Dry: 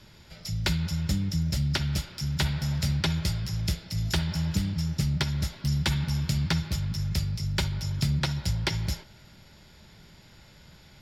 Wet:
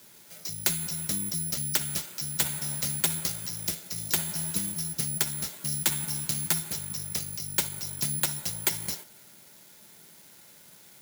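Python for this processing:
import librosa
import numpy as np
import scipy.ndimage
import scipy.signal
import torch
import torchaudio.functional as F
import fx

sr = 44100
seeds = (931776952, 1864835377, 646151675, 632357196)

y = scipy.signal.sosfilt(scipy.signal.butter(2, 230.0, 'highpass', fs=sr, output='sos'), x)
y = (np.kron(y[::4], np.eye(4)[0]) * 4)[:len(y)]
y = y * 10.0 ** (-2.5 / 20.0)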